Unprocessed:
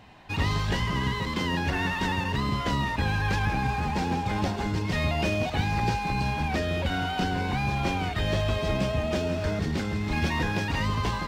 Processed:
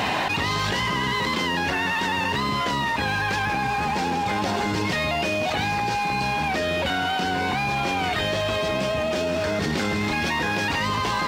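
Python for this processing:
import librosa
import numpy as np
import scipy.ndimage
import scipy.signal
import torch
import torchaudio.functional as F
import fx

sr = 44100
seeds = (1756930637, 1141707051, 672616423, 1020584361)

y = fx.highpass(x, sr, hz=380.0, slope=6)
y = fx.env_flatten(y, sr, amount_pct=100)
y = y * librosa.db_to_amplitude(2.5)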